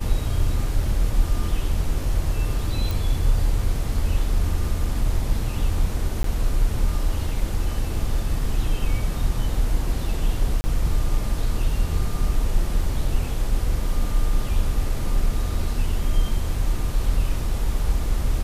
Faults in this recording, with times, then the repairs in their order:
0:02.91: click
0:06.23–0:06.24: drop-out 13 ms
0:10.61–0:10.64: drop-out 30 ms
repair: click removal
repair the gap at 0:06.23, 13 ms
repair the gap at 0:10.61, 30 ms

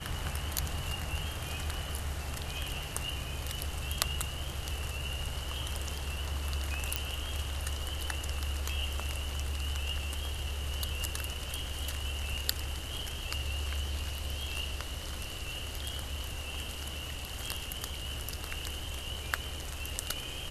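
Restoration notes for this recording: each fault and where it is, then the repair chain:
0:06.96: click −11 dBFS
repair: click removal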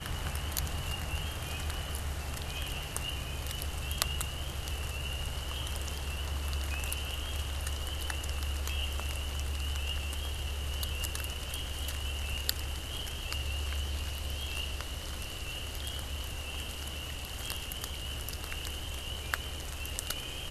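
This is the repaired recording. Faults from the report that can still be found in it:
none of them is left

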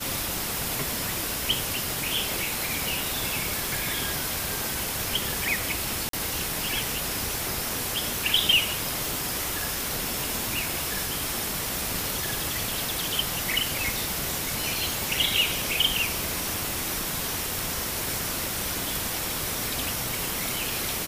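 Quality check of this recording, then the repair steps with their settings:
surface crackle 22 per second −35 dBFS
0:03.65: click
0:06.09–0:06.13: drop-out 43 ms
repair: click removal
repair the gap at 0:06.09, 43 ms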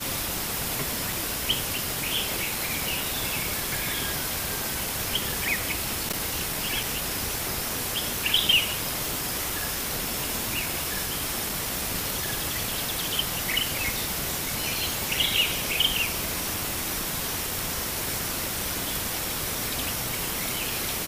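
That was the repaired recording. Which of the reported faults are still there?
none of them is left

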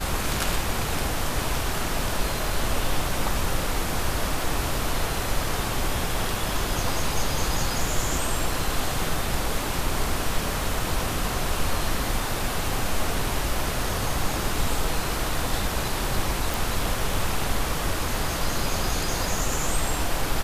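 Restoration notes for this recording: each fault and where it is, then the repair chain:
0:16.54: click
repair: click removal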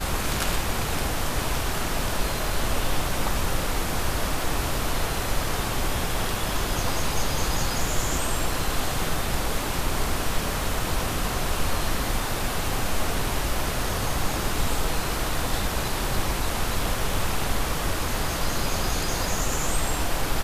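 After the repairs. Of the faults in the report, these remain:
none of them is left

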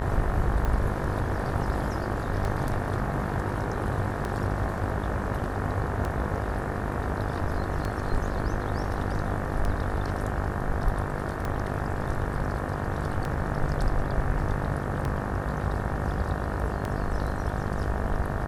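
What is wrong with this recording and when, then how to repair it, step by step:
mains buzz 50 Hz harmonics 37 −33 dBFS
scratch tick 33 1/3 rpm −17 dBFS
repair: click removal
hum removal 50 Hz, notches 37

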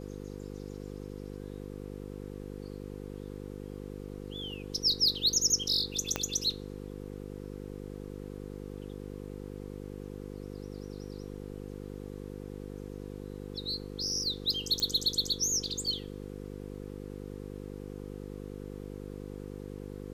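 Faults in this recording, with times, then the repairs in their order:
mains buzz 50 Hz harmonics 10 −42 dBFS
0:06.16: click −14 dBFS
0:14.80: click −18 dBFS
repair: click removal
hum removal 50 Hz, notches 10

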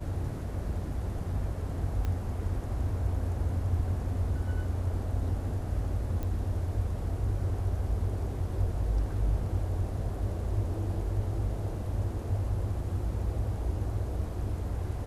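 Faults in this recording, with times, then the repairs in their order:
0:02.05: click −21 dBFS
0:06.23: click −23 dBFS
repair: click removal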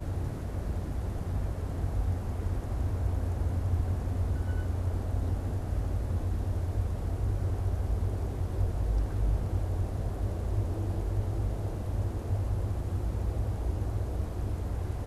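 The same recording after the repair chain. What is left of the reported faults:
0:02.05: click

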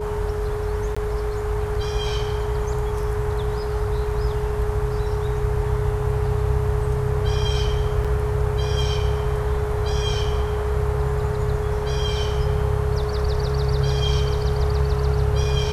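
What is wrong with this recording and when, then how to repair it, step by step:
whistle 420 Hz −26 dBFS
0:00.95–0:00.96: drop-out 15 ms
0:08.04–0:08.05: drop-out 5.9 ms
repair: notch filter 420 Hz, Q 30
repair the gap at 0:00.95, 15 ms
repair the gap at 0:08.04, 5.9 ms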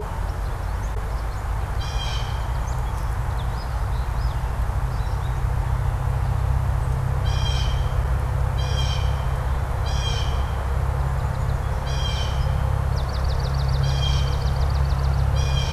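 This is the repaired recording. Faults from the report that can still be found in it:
none of them is left

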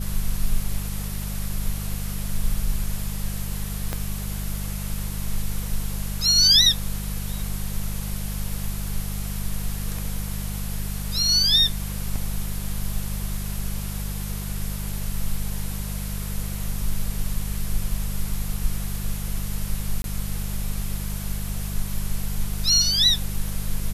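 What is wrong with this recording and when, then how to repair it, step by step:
mains hum 50 Hz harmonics 4 −30 dBFS
0:03.93: click −12 dBFS
0:20.02–0:20.04: drop-out 22 ms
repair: click removal
hum removal 50 Hz, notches 4
repair the gap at 0:20.02, 22 ms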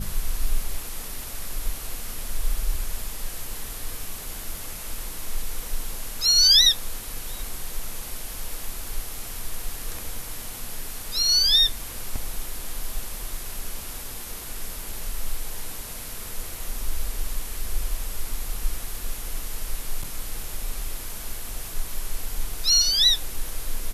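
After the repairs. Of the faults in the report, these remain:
0:03.93: click

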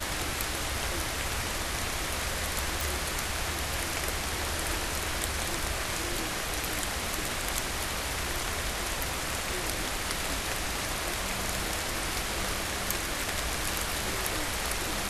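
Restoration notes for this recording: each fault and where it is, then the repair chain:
0:02.81: click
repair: click removal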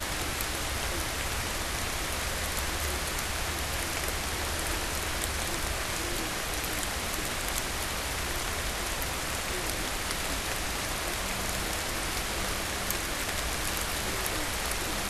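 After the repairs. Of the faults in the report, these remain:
none of them is left

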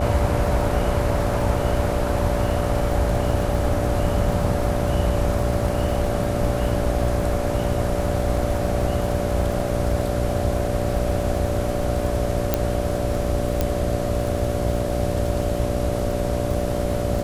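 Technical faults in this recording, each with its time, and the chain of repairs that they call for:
mains buzz 60 Hz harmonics 12 −26 dBFS
surface crackle 40 per second −28 dBFS
whistle 580 Hz −27 dBFS
0:12.54: click −4 dBFS
0:13.61: click −7 dBFS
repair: click removal
notch filter 580 Hz, Q 30
hum removal 60 Hz, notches 12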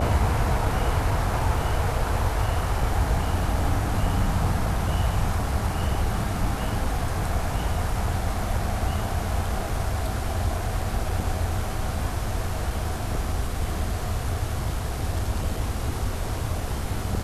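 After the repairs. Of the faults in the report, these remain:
none of them is left

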